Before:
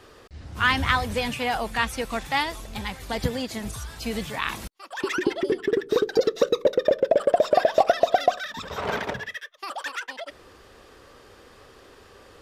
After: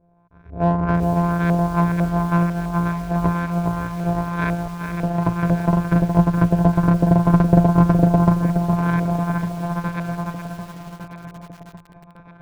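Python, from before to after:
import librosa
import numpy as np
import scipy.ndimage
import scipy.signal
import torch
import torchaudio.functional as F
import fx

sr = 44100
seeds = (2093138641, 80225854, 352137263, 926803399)

p1 = np.r_[np.sort(x[:len(x) // 256 * 256].reshape(-1, 256), axis=1).ravel(), x[len(x) // 256 * 256:]]
p2 = fx.env_lowpass_down(p1, sr, base_hz=890.0, full_db=-19.0)
p3 = fx.ripple_eq(p2, sr, per_octave=1.6, db=10)
p4 = fx.noise_reduce_blind(p3, sr, reduce_db=14)
p5 = fx.filter_lfo_lowpass(p4, sr, shape='saw_up', hz=2.0, low_hz=530.0, high_hz=1900.0, q=2.2)
p6 = np.clip(p5, -10.0 ** (-20.0 / 20.0), 10.0 ** (-20.0 / 20.0))
p7 = p5 + (p6 * 10.0 ** (-7.0 / 20.0))
p8 = fx.echo_feedback(p7, sr, ms=1156, feedback_pct=47, wet_db=-12.0)
p9 = fx.echo_crushed(p8, sr, ms=418, feedback_pct=35, bits=6, wet_db=-7)
y = p9 * 10.0 ** (-1.0 / 20.0)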